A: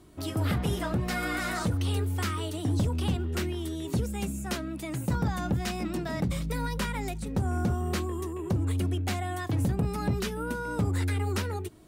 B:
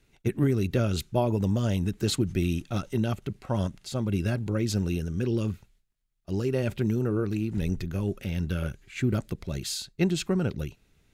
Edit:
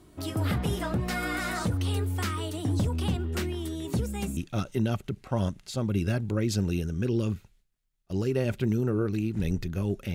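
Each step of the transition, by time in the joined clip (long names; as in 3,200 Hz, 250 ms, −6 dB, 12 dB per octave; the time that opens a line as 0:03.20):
A
0:04.37: continue with B from 0:02.55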